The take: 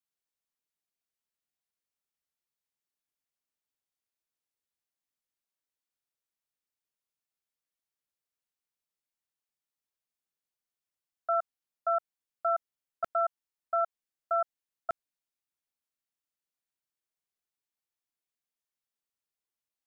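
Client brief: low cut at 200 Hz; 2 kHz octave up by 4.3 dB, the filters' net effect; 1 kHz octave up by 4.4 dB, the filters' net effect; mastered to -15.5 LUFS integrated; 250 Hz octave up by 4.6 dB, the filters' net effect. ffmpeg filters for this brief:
-af "highpass=200,equalizer=f=250:t=o:g=7.5,equalizer=f=1000:t=o:g=5.5,equalizer=f=2000:t=o:g=3,volume=4.73"

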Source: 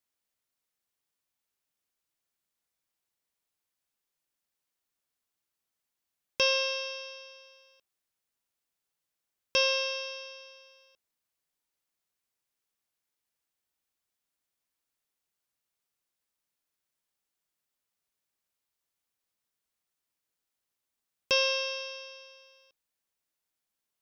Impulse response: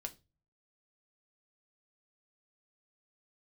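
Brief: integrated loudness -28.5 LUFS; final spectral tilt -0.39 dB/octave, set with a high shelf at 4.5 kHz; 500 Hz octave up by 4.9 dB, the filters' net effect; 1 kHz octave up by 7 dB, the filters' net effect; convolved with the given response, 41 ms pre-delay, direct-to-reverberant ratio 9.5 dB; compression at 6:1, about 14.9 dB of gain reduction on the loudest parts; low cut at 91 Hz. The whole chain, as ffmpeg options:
-filter_complex "[0:a]highpass=91,equalizer=f=500:t=o:g=3.5,equalizer=f=1000:t=o:g=6.5,highshelf=f=4500:g=3,acompressor=threshold=0.0178:ratio=6,asplit=2[s0][s1];[1:a]atrim=start_sample=2205,adelay=41[s2];[s1][s2]afir=irnorm=-1:irlink=0,volume=0.447[s3];[s0][s3]amix=inputs=2:normalize=0,volume=2.82"

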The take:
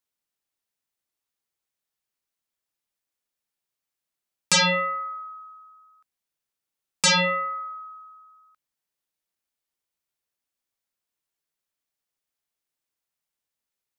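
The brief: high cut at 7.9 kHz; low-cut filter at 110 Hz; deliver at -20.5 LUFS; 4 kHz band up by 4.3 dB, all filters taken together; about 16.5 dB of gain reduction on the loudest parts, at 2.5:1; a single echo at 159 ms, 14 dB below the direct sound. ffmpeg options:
-af "highpass=110,lowpass=7900,equalizer=f=4000:t=o:g=5.5,acompressor=threshold=0.01:ratio=2.5,aecho=1:1:159:0.2,volume=5.62"

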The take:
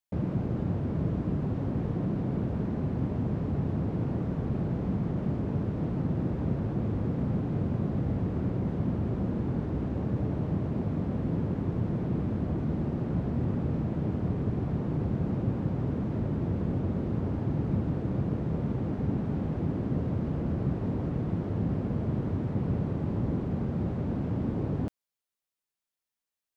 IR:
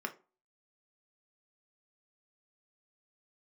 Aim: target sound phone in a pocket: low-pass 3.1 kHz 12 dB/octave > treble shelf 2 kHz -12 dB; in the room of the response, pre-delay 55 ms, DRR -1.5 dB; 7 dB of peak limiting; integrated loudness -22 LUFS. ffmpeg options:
-filter_complex "[0:a]alimiter=limit=0.0631:level=0:latency=1,asplit=2[s0][s1];[1:a]atrim=start_sample=2205,adelay=55[s2];[s1][s2]afir=irnorm=-1:irlink=0,volume=0.891[s3];[s0][s3]amix=inputs=2:normalize=0,lowpass=3100,highshelf=f=2000:g=-12,volume=2.51"

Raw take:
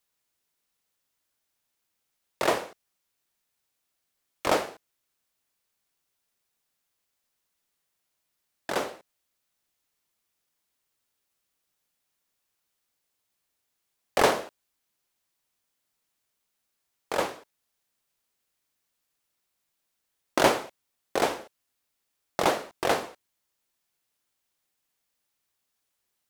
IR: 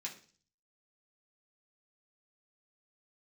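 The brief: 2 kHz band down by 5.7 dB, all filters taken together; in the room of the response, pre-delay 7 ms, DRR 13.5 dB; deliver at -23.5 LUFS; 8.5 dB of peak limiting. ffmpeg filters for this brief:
-filter_complex "[0:a]equalizer=f=2000:t=o:g=-7.5,alimiter=limit=0.178:level=0:latency=1,asplit=2[s0][s1];[1:a]atrim=start_sample=2205,adelay=7[s2];[s1][s2]afir=irnorm=-1:irlink=0,volume=0.251[s3];[s0][s3]amix=inputs=2:normalize=0,volume=2.82"

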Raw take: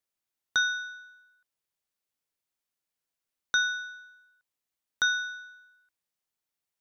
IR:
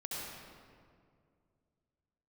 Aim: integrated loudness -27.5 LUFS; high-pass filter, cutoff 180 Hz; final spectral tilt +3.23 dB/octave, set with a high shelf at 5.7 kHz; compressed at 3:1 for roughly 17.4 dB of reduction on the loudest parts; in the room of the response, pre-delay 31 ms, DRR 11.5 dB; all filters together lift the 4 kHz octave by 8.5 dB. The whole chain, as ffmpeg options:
-filter_complex "[0:a]highpass=180,equalizer=f=4000:t=o:g=6.5,highshelf=f=5700:g=8,acompressor=threshold=0.00891:ratio=3,asplit=2[s0][s1];[1:a]atrim=start_sample=2205,adelay=31[s2];[s1][s2]afir=irnorm=-1:irlink=0,volume=0.224[s3];[s0][s3]amix=inputs=2:normalize=0,volume=4.73"

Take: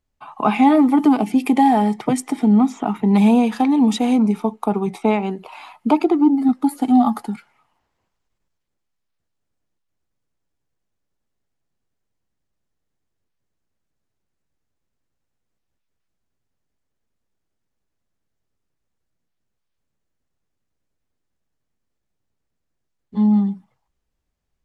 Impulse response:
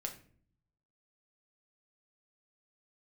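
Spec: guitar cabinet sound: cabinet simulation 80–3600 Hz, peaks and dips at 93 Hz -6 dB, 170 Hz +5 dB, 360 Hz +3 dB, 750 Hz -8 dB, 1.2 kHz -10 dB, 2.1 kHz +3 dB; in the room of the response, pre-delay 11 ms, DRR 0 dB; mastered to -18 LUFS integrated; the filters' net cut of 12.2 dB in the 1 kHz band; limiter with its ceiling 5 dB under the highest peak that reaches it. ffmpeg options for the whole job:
-filter_complex "[0:a]equalizer=f=1000:t=o:g=-8,alimiter=limit=0.299:level=0:latency=1,asplit=2[s0][s1];[1:a]atrim=start_sample=2205,adelay=11[s2];[s1][s2]afir=irnorm=-1:irlink=0,volume=1.12[s3];[s0][s3]amix=inputs=2:normalize=0,highpass=80,equalizer=f=93:t=q:w=4:g=-6,equalizer=f=170:t=q:w=4:g=5,equalizer=f=360:t=q:w=4:g=3,equalizer=f=750:t=q:w=4:g=-8,equalizer=f=1200:t=q:w=4:g=-10,equalizer=f=2100:t=q:w=4:g=3,lowpass=f=3600:w=0.5412,lowpass=f=3600:w=1.3066,volume=0.841"

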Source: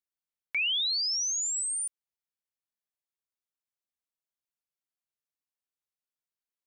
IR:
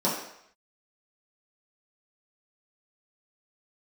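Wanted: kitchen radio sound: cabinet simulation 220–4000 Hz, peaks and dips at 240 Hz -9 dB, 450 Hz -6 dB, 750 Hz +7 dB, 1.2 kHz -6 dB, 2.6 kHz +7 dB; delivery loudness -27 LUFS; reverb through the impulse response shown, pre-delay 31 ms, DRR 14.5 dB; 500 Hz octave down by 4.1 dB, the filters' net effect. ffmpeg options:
-filter_complex "[0:a]equalizer=f=500:t=o:g=-5.5,asplit=2[s0][s1];[1:a]atrim=start_sample=2205,adelay=31[s2];[s1][s2]afir=irnorm=-1:irlink=0,volume=0.0447[s3];[s0][s3]amix=inputs=2:normalize=0,highpass=220,equalizer=f=240:t=q:w=4:g=-9,equalizer=f=450:t=q:w=4:g=-6,equalizer=f=750:t=q:w=4:g=7,equalizer=f=1200:t=q:w=4:g=-6,equalizer=f=2600:t=q:w=4:g=7,lowpass=f=4000:w=0.5412,lowpass=f=4000:w=1.3066,volume=0.891"

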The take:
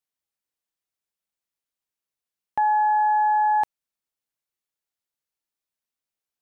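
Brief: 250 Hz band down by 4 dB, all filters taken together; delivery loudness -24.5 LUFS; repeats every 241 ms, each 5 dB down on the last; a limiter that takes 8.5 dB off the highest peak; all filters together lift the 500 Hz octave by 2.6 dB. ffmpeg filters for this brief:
-af "equalizer=f=250:t=o:g=-7.5,equalizer=f=500:t=o:g=5,alimiter=limit=0.0708:level=0:latency=1,aecho=1:1:241|482|723|964|1205|1446|1687:0.562|0.315|0.176|0.0988|0.0553|0.031|0.0173,volume=2.11"

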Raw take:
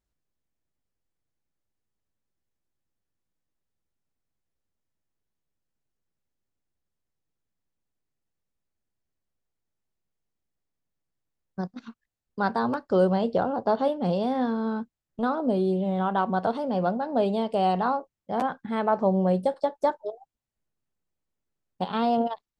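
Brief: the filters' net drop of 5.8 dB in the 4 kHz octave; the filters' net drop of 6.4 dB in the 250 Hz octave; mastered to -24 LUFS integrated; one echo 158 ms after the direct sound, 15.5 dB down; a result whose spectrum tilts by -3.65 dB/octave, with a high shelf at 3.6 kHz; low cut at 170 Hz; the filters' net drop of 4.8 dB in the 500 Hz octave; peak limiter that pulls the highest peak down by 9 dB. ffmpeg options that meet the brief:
-af "highpass=170,equalizer=f=250:t=o:g=-5.5,equalizer=f=500:t=o:g=-4.5,highshelf=f=3600:g=-6.5,equalizer=f=4000:t=o:g=-3.5,alimiter=limit=0.0668:level=0:latency=1,aecho=1:1:158:0.168,volume=3.16"

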